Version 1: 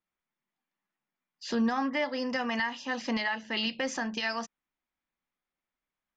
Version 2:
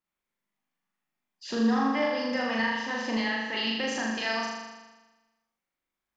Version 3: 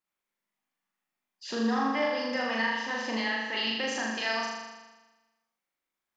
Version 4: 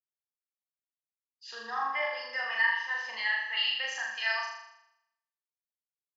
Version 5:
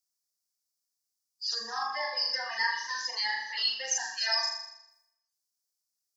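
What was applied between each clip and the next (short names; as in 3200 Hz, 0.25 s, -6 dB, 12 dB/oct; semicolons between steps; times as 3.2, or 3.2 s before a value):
flutter echo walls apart 6.9 m, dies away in 1.2 s; gain -2 dB
low shelf 190 Hz -10 dB
HPF 1000 Hz 12 dB/oct; spectral expander 1.5:1; gain +3.5 dB
bin magnitudes rounded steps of 30 dB; resonant high shelf 3800 Hz +11 dB, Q 3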